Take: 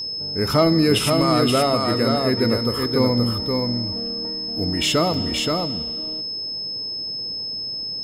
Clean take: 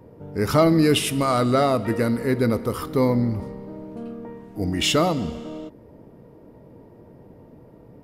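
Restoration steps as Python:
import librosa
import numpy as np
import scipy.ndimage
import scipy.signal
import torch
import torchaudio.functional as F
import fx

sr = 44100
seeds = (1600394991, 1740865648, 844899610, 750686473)

y = fx.notch(x, sr, hz=5200.0, q=30.0)
y = fx.fix_interpolate(y, sr, at_s=(5.14,), length_ms=4.5)
y = fx.fix_echo_inverse(y, sr, delay_ms=525, level_db=-4.0)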